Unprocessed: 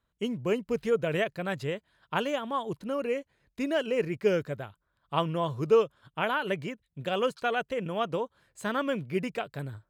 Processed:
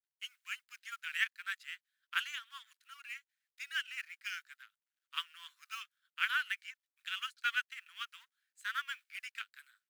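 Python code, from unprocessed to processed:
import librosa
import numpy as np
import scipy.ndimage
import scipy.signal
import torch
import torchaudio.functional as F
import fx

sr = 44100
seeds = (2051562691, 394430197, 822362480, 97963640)

y = fx.law_mismatch(x, sr, coded='A')
y = scipy.signal.sosfilt(scipy.signal.butter(8, 1400.0, 'highpass', fs=sr, output='sos'), y)
y = fx.upward_expand(y, sr, threshold_db=-51.0, expansion=1.5)
y = y * 10.0 ** (3.0 / 20.0)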